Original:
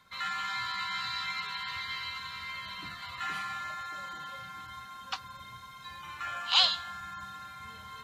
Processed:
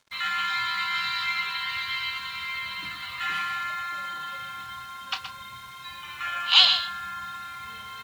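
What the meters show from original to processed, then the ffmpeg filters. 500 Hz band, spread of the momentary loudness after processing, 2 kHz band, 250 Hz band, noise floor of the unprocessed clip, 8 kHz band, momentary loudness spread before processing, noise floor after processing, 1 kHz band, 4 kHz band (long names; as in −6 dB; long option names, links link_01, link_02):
+1.5 dB, 19 LU, +8.0 dB, +1.0 dB, −49 dBFS, +3.5 dB, 18 LU, −43 dBFS, +5.5 dB, +7.5 dB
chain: -filter_complex "[0:a]equalizer=frequency=2700:width=0.94:gain=9,acrusher=bits=7:mix=0:aa=0.5,asplit=2[link_01][link_02];[link_02]adelay=31,volume=-11.5dB[link_03];[link_01][link_03]amix=inputs=2:normalize=0,asplit=2[link_04][link_05];[link_05]aecho=0:1:122:0.335[link_06];[link_04][link_06]amix=inputs=2:normalize=0"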